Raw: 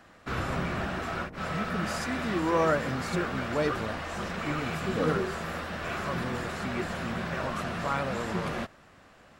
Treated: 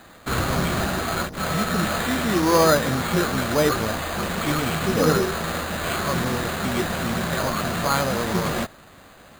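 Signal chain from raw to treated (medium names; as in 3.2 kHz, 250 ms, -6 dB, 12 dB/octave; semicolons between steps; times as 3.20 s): careless resampling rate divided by 8×, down none, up hold; trim +8 dB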